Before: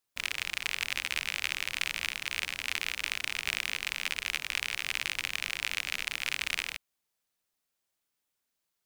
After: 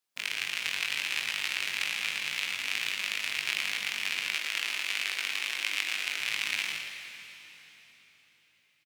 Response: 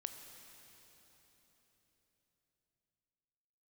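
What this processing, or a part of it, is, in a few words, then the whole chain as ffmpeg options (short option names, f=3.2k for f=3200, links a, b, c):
PA in a hall: -filter_complex "[0:a]highpass=f=120:w=0.5412,highpass=f=120:w=1.3066,equalizer=f=3.4k:t=o:w=2.3:g=3,aecho=1:1:114:0.473[a];[1:a]atrim=start_sample=2205[b];[a][b]afir=irnorm=-1:irlink=0,asettb=1/sr,asplit=3[c][d][e];[c]atrim=end=4.354[f];[d]atrim=start=4.35:end=6.19,asetpts=PTS-STARTPTS,afade=t=in:d=0.004:c=qsin,afade=t=out:st=1.836:d=0.004:c=qsin,highpass=f=230:w=0.5412,highpass=f=230:w=1.3066[g];[e]atrim=start=6.186[h];[f][g]acrossfade=d=0.004:c1=hsin:c2=qsin[i];[i][h]acrossfade=d=0.004:c1=qsin:c2=hsin,asplit=2[j][k];[k]adelay=20,volume=-5dB[l];[j][l]amix=inputs=2:normalize=0"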